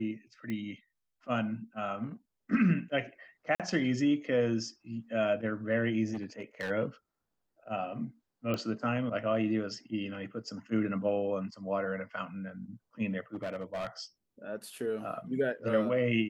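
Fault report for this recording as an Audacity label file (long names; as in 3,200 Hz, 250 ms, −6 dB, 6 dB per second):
0.500000	0.500000	click −25 dBFS
3.550000	3.600000	drop-out 47 ms
6.130000	6.710000	clipping −31.5 dBFS
8.540000	8.540000	click −20 dBFS
13.340000	13.870000	clipping −32 dBFS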